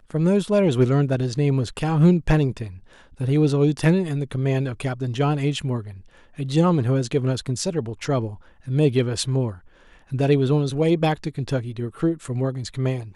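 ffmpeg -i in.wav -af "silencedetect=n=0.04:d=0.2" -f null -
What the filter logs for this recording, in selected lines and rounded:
silence_start: 2.68
silence_end: 3.21 | silence_duration: 0.53
silence_start: 5.89
silence_end: 6.39 | silence_duration: 0.50
silence_start: 8.33
silence_end: 8.68 | silence_duration: 0.35
silence_start: 9.51
silence_end: 10.12 | silence_duration: 0.61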